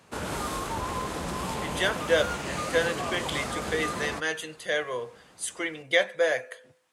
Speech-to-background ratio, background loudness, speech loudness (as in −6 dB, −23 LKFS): 4.0 dB, −32.5 LKFS, −28.5 LKFS